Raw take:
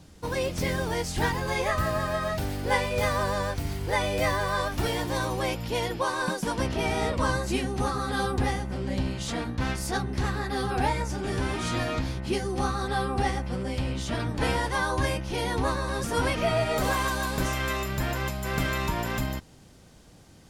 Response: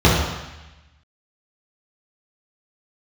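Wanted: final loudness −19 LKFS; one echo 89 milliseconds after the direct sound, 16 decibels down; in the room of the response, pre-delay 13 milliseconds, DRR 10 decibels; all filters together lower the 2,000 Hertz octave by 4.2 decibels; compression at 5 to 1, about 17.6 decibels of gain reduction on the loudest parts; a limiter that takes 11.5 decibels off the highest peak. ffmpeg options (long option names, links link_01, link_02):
-filter_complex "[0:a]equalizer=frequency=2000:width_type=o:gain=-5.5,acompressor=threshold=-43dB:ratio=5,alimiter=level_in=17.5dB:limit=-24dB:level=0:latency=1,volume=-17.5dB,aecho=1:1:89:0.158,asplit=2[link_01][link_02];[1:a]atrim=start_sample=2205,adelay=13[link_03];[link_02][link_03]afir=irnorm=-1:irlink=0,volume=-35dB[link_04];[link_01][link_04]amix=inputs=2:normalize=0,volume=27dB"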